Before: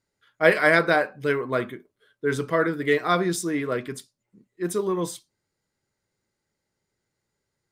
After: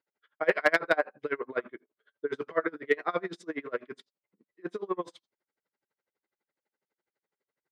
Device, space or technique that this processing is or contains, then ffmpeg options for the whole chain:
helicopter radio: -af "highpass=360,lowpass=2.6k,aeval=exprs='val(0)*pow(10,-30*(0.5-0.5*cos(2*PI*12*n/s))/20)':c=same,asoftclip=type=hard:threshold=-13.5dB,volume=1dB"

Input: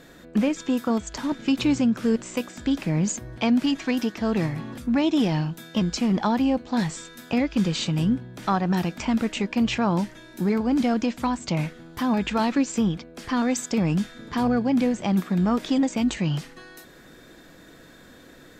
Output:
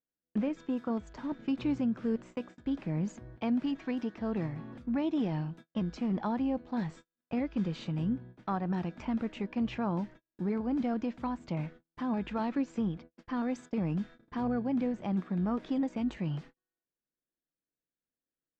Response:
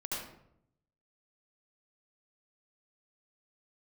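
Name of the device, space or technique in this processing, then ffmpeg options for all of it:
through cloth: -af "lowpass=6.4k,highshelf=f=3.2k:g=-16,agate=range=-41dB:threshold=-38dB:ratio=16:detection=peak,volume=-9dB"

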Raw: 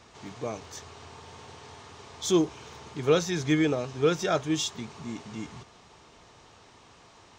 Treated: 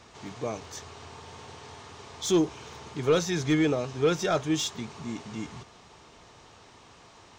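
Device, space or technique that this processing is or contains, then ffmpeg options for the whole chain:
saturation between pre-emphasis and de-emphasis: -af "highshelf=f=2.1k:g=11,asoftclip=type=tanh:threshold=-15dB,highshelf=f=2.1k:g=-11,volume=1.5dB"

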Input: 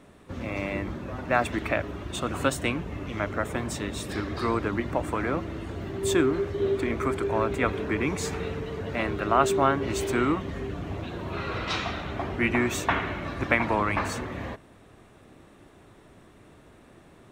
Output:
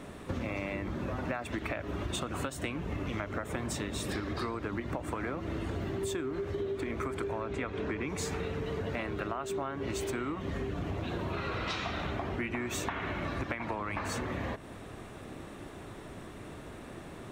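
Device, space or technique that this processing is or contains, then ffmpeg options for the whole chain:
serial compression, leveller first: -filter_complex "[0:a]acompressor=threshold=-29dB:ratio=3,acompressor=threshold=-39dB:ratio=10,asettb=1/sr,asplit=3[a][b][c];[a]atrim=end=7.414[d];[b]atrim=start=7.41:end=8.09,asetpts=PTS-STARTPTS,afade=t=in:d=0.004:c=qsin,afade=t=out:st=0.676:d=0.004:c=qsin,lowpass=7k[e];[c]atrim=start=8.086[f];[d][e]acrossfade=d=0.004:c1=hsin:c2=qsin[g];[g][f]acrossfade=d=0.004:c1=qsin:c2=hsin,volume=7.5dB"

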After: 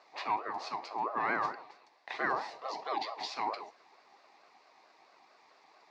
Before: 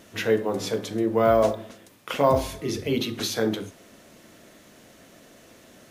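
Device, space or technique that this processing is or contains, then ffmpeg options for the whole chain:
voice changer toy: -af "aeval=exprs='val(0)*sin(2*PI*720*n/s+720*0.3/4.5*sin(2*PI*4.5*n/s))':c=same,highpass=510,equalizer=f=530:t=q:w=4:g=-3,equalizer=f=790:t=q:w=4:g=5,equalizer=f=1.4k:t=q:w=4:g=-8,equalizer=f=2k:t=q:w=4:g=4,equalizer=f=3.1k:t=q:w=4:g=-10,equalizer=f=4.6k:t=q:w=4:g=4,lowpass=f=4.8k:w=0.5412,lowpass=f=4.8k:w=1.3066,volume=-5.5dB"

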